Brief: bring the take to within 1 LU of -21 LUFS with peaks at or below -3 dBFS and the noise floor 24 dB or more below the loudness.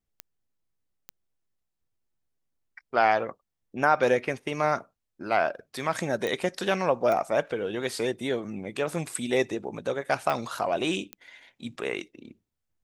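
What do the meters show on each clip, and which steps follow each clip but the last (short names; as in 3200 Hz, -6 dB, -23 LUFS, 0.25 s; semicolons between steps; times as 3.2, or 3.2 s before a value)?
clicks 6; loudness -28.0 LUFS; peak -7.5 dBFS; loudness target -21.0 LUFS
-> de-click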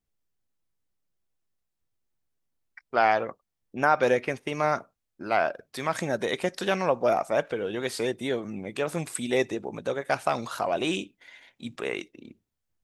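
clicks 0; loudness -28.0 LUFS; peak -7.5 dBFS; loudness target -21.0 LUFS
-> gain +7 dB; limiter -3 dBFS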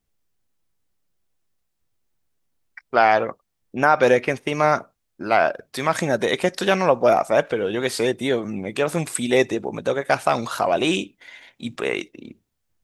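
loudness -21.0 LUFS; peak -3.0 dBFS; noise floor -75 dBFS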